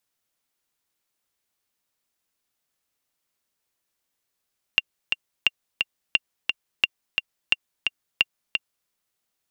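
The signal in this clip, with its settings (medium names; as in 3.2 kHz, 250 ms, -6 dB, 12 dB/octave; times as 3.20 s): metronome 175 bpm, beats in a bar 2, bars 6, 2.78 kHz, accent 4.5 dB -4 dBFS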